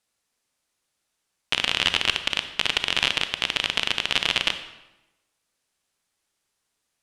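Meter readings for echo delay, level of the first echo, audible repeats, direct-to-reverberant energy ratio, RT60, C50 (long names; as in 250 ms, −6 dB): no echo audible, no echo audible, no echo audible, 9.0 dB, 1.0 s, 10.5 dB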